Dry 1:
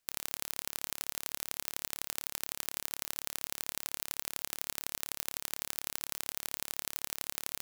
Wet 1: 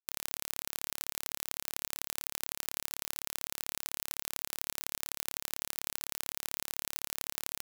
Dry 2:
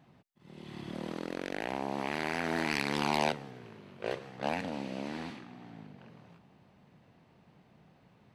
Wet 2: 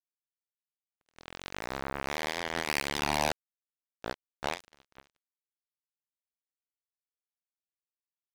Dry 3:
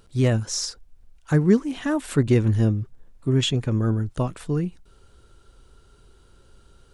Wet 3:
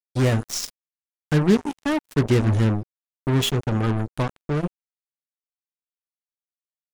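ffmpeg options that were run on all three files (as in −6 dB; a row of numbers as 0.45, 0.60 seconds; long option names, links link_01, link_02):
-af "bandreject=frequency=80.86:width_type=h:width=4,bandreject=frequency=161.72:width_type=h:width=4,bandreject=frequency=242.58:width_type=h:width=4,bandreject=frequency=323.44:width_type=h:width=4,bandreject=frequency=404.3:width_type=h:width=4,acrusher=bits=3:mix=0:aa=0.5"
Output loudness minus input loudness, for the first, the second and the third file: +0.5, +0.5, 0.0 LU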